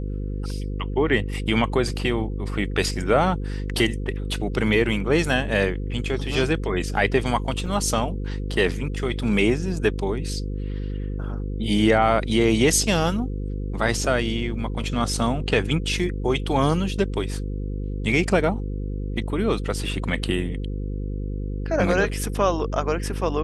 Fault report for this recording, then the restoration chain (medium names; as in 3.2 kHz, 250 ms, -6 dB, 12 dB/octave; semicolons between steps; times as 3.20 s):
buzz 50 Hz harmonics 10 -28 dBFS
7.66–7.67 s: dropout 5.1 ms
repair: de-hum 50 Hz, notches 10; interpolate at 7.66 s, 5.1 ms